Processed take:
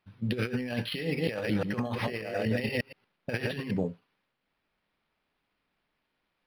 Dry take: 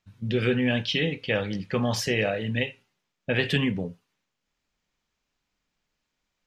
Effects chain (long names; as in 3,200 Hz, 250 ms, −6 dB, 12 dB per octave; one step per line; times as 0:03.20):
0:01.04–0:03.71: delay that plays each chunk backwards 118 ms, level −3 dB
low-shelf EQ 120 Hz −9.5 dB
compressor whose output falls as the input rises −29 dBFS, ratio −0.5
dynamic equaliser 6,800 Hz, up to −7 dB, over −48 dBFS, Q 0.76
linearly interpolated sample-rate reduction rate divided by 6×